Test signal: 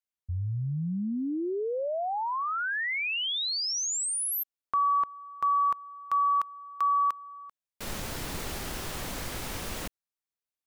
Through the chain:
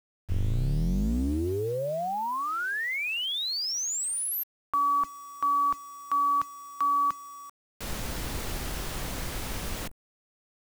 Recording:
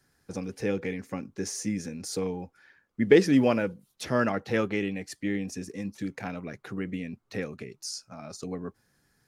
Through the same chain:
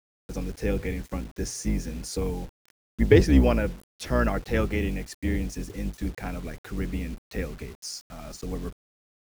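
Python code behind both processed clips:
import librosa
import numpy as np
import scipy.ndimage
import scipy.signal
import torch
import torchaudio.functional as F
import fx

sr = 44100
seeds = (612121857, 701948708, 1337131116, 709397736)

y = fx.octave_divider(x, sr, octaves=2, level_db=3.0)
y = fx.quant_dither(y, sr, seeds[0], bits=8, dither='none')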